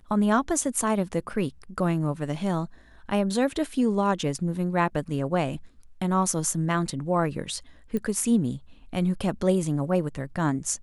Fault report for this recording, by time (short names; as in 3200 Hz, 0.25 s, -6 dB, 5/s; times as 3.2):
7.97 pop -19 dBFS